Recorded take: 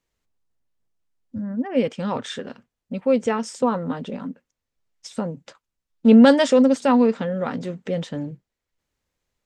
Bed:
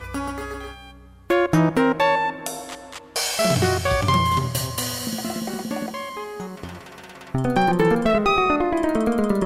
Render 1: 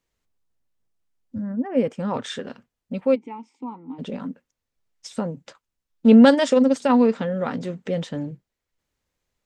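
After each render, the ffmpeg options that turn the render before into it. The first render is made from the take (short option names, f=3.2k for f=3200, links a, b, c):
-filter_complex "[0:a]asettb=1/sr,asplit=3[a][b][c];[a]atrim=end=1.524[d];[b]atrim=start=1.52:end=2.14,asetpts=PTS-STARTPTS,afade=t=in:d=0.004:c=qsin,afade=t=out:st=0.616:d=0.004:c=qsin,equalizer=f=3.7k:w=0.89:g=-11[e];[c]atrim=start=2.136[f];[d][e]acrossfade=d=0.004:c1=hsin:c2=qsin[g];[g][f]acrossfade=d=0.004:c1=qsin:c2=hsin,asplit=3[h][i][j];[h]afade=t=out:st=3.14:d=0.02[k];[i]asplit=3[l][m][n];[l]bandpass=f=300:t=q:w=8,volume=0dB[o];[m]bandpass=f=870:t=q:w=8,volume=-6dB[p];[n]bandpass=f=2.24k:t=q:w=8,volume=-9dB[q];[o][p][q]amix=inputs=3:normalize=0,afade=t=in:st=3.14:d=0.02,afade=t=out:st=3.98:d=0.02[r];[j]afade=t=in:st=3.98:d=0.02[s];[k][r][s]amix=inputs=3:normalize=0,asettb=1/sr,asplit=3[t][u][v];[t]atrim=end=6.294[w];[u]atrim=start=6.29:end=6.92,asetpts=PTS-STARTPTS,afade=t=in:d=0.004:c=qsin,afade=t=out:st=0.626:d=0.004:c=qsin,tremolo=f=21:d=0.4[x];[v]atrim=start=6.916[y];[w][x]acrossfade=d=0.004:c1=hsin:c2=qsin[z];[z][y]acrossfade=d=0.004:c1=qsin:c2=hsin"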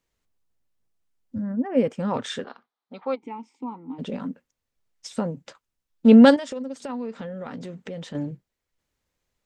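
-filter_complex "[0:a]asettb=1/sr,asplit=3[a][b][c];[a]atrim=end=2.444[d];[b]atrim=start=2.44:end=3.23,asetpts=PTS-STARTPTS,afade=t=in:d=0.004:c=qsin,afade=t=out:st=0.786:d=0.004:c=qsin,highpass=490,equalizer=f=560:t=q:w=4:g=-8,equalizer=f=800:t=q:w=4:g=6,equalizer=f=1.2k:t=q:w=4:g=7,equalizer=f=1.8k:t=q:w=4:g=-4,equalizer=f=2.7k:t=q:w=4:g=-9,equalizer=f=3.9k:t=q:w=4:g=4,lowpass=f=4.3k:w=0.5412,lowpass=f=4.3k:w=1.3066[e];[c]atrim=start=3.226[f];[d][e]acrossfade=d=0.004:c1=hsin:c2=qsin[g];[g][f]acrossfade=d=0.004:c1=qsin:c2=hsin,asettb=1/sr,asplit=3[h][i][j];[h]atrim=end=6.364[k];[i]atrim=start=6.36:end=8.15,asetpts=PTS-STARTPTS,afade=t=in:d=0.004:c=qsin,afade=t=out:st=1.786:d=0.004:c=qsin,acompressor=threshold=-34dB:ratio=3:attack=3.2:release=140:knee=1:detection=peak[l];[j]atrim=start=8.146[m];[k][l]acrossfade=d=0.004:c1=hsin:c2=qsin[n];[n][m]acrossfade=d=0.004:c1=qsin:c2=hsin"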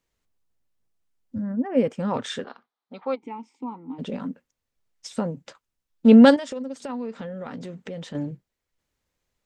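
-af anull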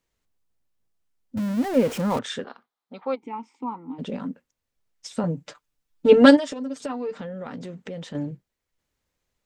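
-filter_complex "[0:a]asettb=1/sr,asplit=3[a][b][c];[a]atrim=end=1.374[d];[b]atrim=start=1.37:end=2.19,asetpts=PTS-STARTPTS,afade=t=in:d=0.004:c=qsin,afade=t=out:st=0.816:d=0.004:c=qsin,aeval=exprs='val(0)+0.5*0.0335*sgn(val(0))':c=same[e];[c]atrim=start=2.186[f];[d][e]acrossfade=d=0.004:c1=hsin:c2=qsin[g];[g][f]acrossfade=d=0.004:c1=qsin:c2=hsin,asettb=1/sr,asplit=3[h][i][j];[h]atrim=end=3.334[k];[i]atrim=start=3.33:end=3.9,asetpts=PTS-STARTPTS,afade=t=in:d=0.004:c=qsin,afade=t=out:st=0.566:d=0.004:c=qsin,equalizer=f=1.3k:w=0.93:g=7.5[l];[j]atrim=start=3.896[m];[k][l]acrossfade=d=0.004:c1=hsin:c2=qsin[n];[n][m]acrossfade=d=0.004:c1=qsin:c2=hsin,asettb=1/sr,asplit=3[o][p][q];[o]atrim=end=5.234[r];[p]atrim=start=5.23:end=7.18,asetpts=PTS-STARTPTS,afade=t=in:d=0.004:c=qsin,afade=t=out:st=1.946:d=0.004:c=qsin,aecho=1:1:6.7:0.97,atrim=end_sample=85995[s];[q]atrim=start=7.176[t];[r][s]acrossfade=d=0.004:c1=hsin:c2=qsin[u];[u][t]acrossfade=d=0.004:c1=qsin:c2=hsin"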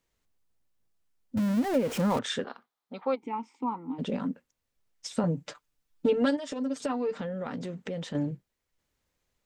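-af "acompressor=threshold=-22dB:ratio=10"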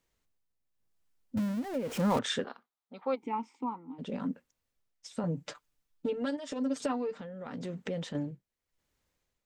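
-af "tremolo=f=0.89:d=0.65"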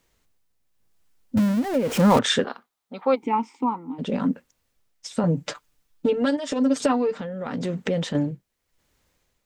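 -af "volume=11dB"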